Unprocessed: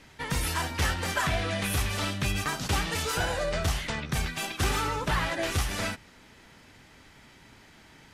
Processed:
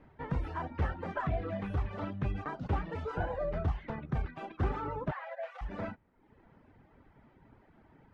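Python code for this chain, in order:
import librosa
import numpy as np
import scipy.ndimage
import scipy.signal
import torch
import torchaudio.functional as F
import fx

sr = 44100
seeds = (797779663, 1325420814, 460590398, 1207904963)

y = scipy.signal.sosfilt(scipy.signal.butter(2, 1000.0, 'lowpass', fs=sr, output='sos'), x)
y = fx.dereverb_blind(y, sr, rt60_s=0.81)
y = fx.cheby_ripple_highpass(y, sr, hz=510.0, ripple_db=6, at=(5.1, 5.61), fade=0.02)
y = y * librosa.db_to_amplitude(-2.0)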